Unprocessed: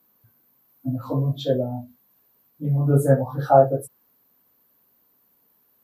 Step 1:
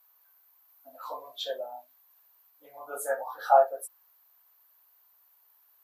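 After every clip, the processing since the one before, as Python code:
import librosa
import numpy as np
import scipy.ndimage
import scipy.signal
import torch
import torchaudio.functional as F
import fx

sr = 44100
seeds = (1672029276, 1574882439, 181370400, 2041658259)

y = scipy.signal.sosfilt(scipy.signal.butter(4, 740.0, 'highpass', fs=sr, output='sos'), x)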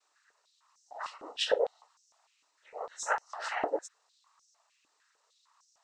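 y = fx.peak_eq(x, sr, hz=6100.0, db=8.0, octaves=1.0)
y = fx.noise_vocoder(y, sr, seeds[0], bands=12)
y = fx.filter_held_highpass(y, sr, hz=6.6, low_hz=300.0, high_hz=5800.0)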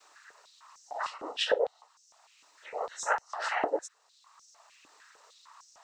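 y = fx.band_squash(x, sr, depth_pct=40)
y = y * 10.0 ** (3.5 / 20.0)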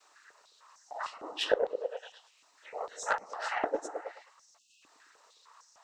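y = fx.cheby_harmonics(x, sr, harmonics=(2, 3), levels_db=(-38, -16), full_scale_db=-12.5)
y = fx.echo_stepped(y, sr, ms=107, hz=240.0, octaves=0.7, feedback_pct=70, wet_db=-4)
y = fx.spec_erase(y, sr, start_s=4.58, length_s=0.24, low_hz=330.0, high_hz=2500.0)
y = y * 10.0 ** (2.0 / 20.0)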